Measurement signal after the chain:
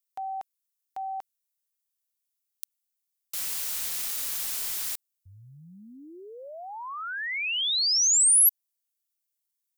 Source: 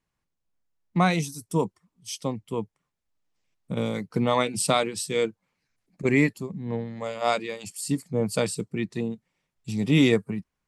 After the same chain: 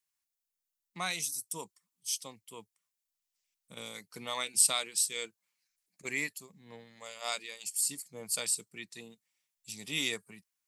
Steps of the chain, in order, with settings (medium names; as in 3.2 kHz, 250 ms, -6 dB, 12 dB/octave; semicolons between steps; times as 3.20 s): pre-emphasis filter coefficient 0.97; trim +3.5 dB